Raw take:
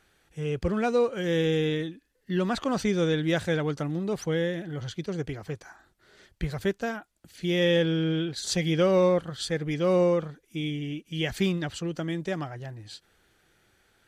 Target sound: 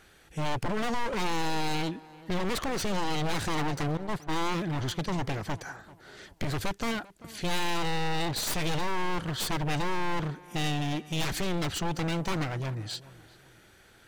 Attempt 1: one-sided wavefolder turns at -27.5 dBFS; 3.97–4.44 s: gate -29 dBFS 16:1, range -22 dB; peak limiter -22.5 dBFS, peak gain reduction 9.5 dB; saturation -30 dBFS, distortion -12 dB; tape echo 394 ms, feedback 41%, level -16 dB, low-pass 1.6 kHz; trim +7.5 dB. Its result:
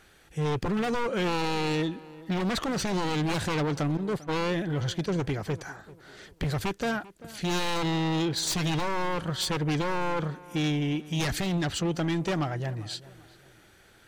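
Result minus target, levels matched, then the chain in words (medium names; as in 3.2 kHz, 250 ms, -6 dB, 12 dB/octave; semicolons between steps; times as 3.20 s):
one-sided wavefolder: distortion -10 dB
one-sided wavefolder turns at -36.5 dBFS; 3.97–4.44 s: gate -29 dBFS 16:1, range -22 dB; peak limiter -22.5 dBFS, peak gain reduction 9.5 dB; saturation -30 dBFS, distortion -12 dB; tape echo 394 ms, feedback 41%, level -16 dB, low-pass 1.6 kHz; trim +7.5 dB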